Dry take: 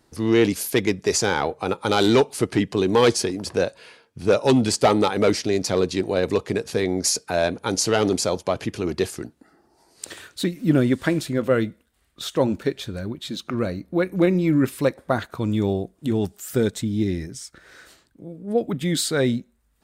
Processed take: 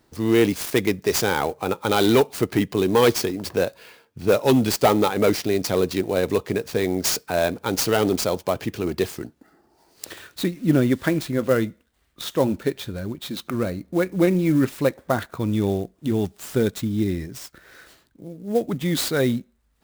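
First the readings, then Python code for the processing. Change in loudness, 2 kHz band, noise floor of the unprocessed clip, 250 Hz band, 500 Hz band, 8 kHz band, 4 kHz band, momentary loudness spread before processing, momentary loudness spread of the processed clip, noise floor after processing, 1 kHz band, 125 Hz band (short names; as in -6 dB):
0.0 dB, 0.0 dB, -64 dBFS, 0.0 dB, 0.0 dB, -2.5 dB, -1.0 dB, 12 LU, 12 LU, -64 dBFS, 0.0 dB, 0.0 dB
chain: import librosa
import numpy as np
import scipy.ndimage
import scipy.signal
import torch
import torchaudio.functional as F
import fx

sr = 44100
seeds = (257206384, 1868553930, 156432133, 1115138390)

y = fx.clock_jitter(x, sr, seeds[0], jitter_ms=0.022)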